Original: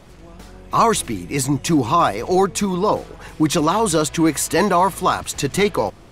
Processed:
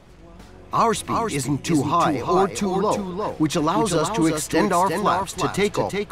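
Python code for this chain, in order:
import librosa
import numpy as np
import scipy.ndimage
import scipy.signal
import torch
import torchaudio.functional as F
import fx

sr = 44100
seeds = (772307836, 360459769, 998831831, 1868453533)

y = fx.high_shelf(x, sr, hz=6200.0, db=-5.5)
y = y + 10.0 ** (-5.0 / 20.0) * np.pad(y, (int(355 * sr / 1000.0), 0))[:len(y)]
y = F.gain(torch.from_numpy(y), -3.5).numpy()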